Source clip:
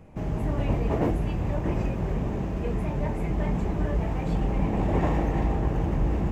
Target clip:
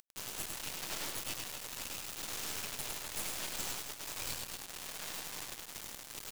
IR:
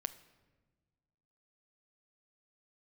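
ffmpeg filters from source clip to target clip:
-filter_complex "[0:a]bandreject=frequency=60:width_type=h:width=6,bandreject=frequency=120:width_type=h:width=6,bandreject=frequency=180:width_type=h:width=6,bandreject=frequency=240:width_type=h:width=6,asettb=1/sr,asplit=3[link_01][link_02][link_03];[link_01]atrim=end=0.624[link_04];[link_02]atrim=start=0.62:end=1.1,asetpts=PTS-STARTPTS,afade=type=in:duration=0.004:curve=qsin,afade=type=out:start_time=0.476:duration=0.004:curve=qsin,asoftclip=type=hard:threshold=-22.5dB[link_05];[link_03]atrim=start=1.096[link_06];[link_04][link_05]acrossfade=duration=0.004:curve1=hsin:curve2=qsin[link_07];[link_07][link_06]acrossfade=duration=0.004:curve1=qsin:curve2=hsin,asettb=1/sr,asplit=3[link_08][link_09][link_10];[link_08]atrim=end=2.164[link_11];[link_09]atrim=start=2.16:end=2.59,asetpts=PTS-STARTPTS,afade=type=in:duration=0.004:curve=qsin,afade=type=out:start_time=0.426:duration=0.004:curve=qsin,bass=frequency=250:gain=-4,treble=frequency=4000:gain=0[link_12];[link_10]atrim=start=2.586[link_13];[link_11][link_12]acrossfade=duration=0.004:curve1=hsin:curve2=qsin[link_14];[link_14][link_13]acrossfade=duration=0.004:curve1=qsin:curve2=hsin,asettb=1/sr,asplit=3[link_15][link_16][link_17];[link_15]atrim=end=3.174[link_18];[link_16]atrim=start=3.17:end=3.82,asetpts=PTS-STARTPTS,afade=type=in:duration=0.004:curve=qsin,afade=type=out:start_time=0.646:duration=0.004:curve=qsin,highpass=frequency=98:width=0.5412,highpass=frequency=98:width=1.3066[link_19];[link_17]atrim=start=3.816[link_20];[link_18][link_19]acrossfade=duration=0.004:curve1=hsin:curve2=qsin[link_21];[link_21][link_20]acrossfade=duration=0.004:curve1=qsin:curve2=hsin,acompressor=threshold=-27dB:ratio=6,alimiter=level_in=2.5dB:limit=-24dB:level=0:latency=1:release=293,volume=-2.5dB,aexciter=amount=8:drive=6.6:freq=2900,asoftclip=type=tanh:threshold=-37dB,asplit=2[link_22][link_23];[link_23]highpass=frequency=720:poles=1,volume=18dB,asoftclip=type=tanh:threshold=-22dB[link_24];[link_22][link_24]amix=inputs=2:normalize=0,lowpass=frequency=1200:poles=1,volume=-6dB,aderivative,acrusher=bits=5:dc=4:mix=0:aa=0.000001,asplit=2[link_25][link_26];[link_26]aecho=0:1:102|262:0.631|0.282[link_27];[link_25][link_27]amix=inputs=2:normalize=0,volume=13dB"

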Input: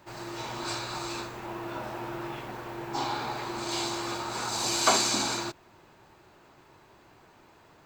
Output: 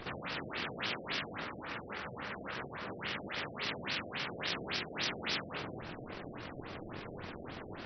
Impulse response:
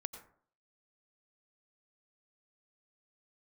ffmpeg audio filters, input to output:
-filter_complex "[0:a]asplit=2[link_01][link_02];[1:a]atrim=start_sample=2205[link_03];[link_02][link_03]afir=irnorm=-1:irlink=0,volume=1dB[link_04];[link_01][link_04]amix=inputs=2:normalize=0,aeval=exprs='abs(val(0))':channel_layout=same,areverse,acompressor=threshold=-39dB:ratio=6,areverse,asetrate=26222,aresample=44100,atempo=1.68179,afftfilt=real='re*lt(hypot(re,im),0.0126)':imag='im*lt(hypot(re,im),0.0126)':win_size=1024:overlap=0.75,equalizer=frequency=870:width_type=o:width=1.3:gain=-6.5,afftfilt=real='re*lt(b*sr/1024,720*pow(6100/720,0.5+0.5*sin(2*PI*3.6*pts/sr)))':imag='im*lt(b*sr/1024,720*pow(6100/720,0.5+0.5*sin(2*PI*3.6*pts/sr)))':win_size=1024:overlap=0.75,volume=15dB"

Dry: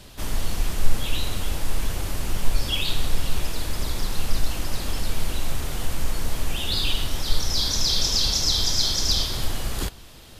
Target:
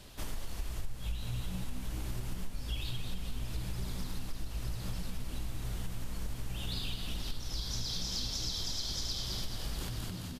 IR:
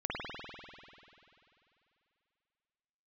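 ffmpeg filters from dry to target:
-filter_complex "[0:a]asplit=8[link_01][link_02][link_03][link_04][link_05][link_06][link_07][link_08];[link_02]adelay=214,afreqshift=-64,volume=-6dB[link_09];[link_03]adelay=428,afreqshift=-128,volume=-11.4dB[link_10];[link_04]adelay=642,afreqshift=-192,volume=-16.7dB[link_11];[link_05]adelay=856,afreqshift=-256,volume=-22.1dB[link_12];[link_06]adelay=1070,afreqshift=-320,volume=-27.4dB[link_13];[link_07]adelay=1284,afreqshift=-384,volume=-32.8dB[link_14];[link_08]adelay=1498,afreqshift=-448,volume=-38.1dB[link_15];[link_01][link_09][link_10][link_11][link_12][link_13][link_14][link_15]amix=inputs=8:normalize=0,acompressor=threshold=-26dB:ratio=5,volume=-7dB"

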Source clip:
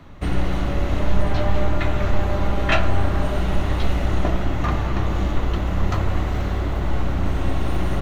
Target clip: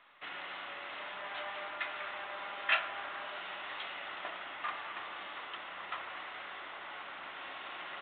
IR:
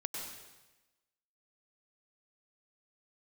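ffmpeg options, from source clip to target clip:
-af "highpass=1300,volume=-6dB" -ar 8000 -c:a pcm_mulaw

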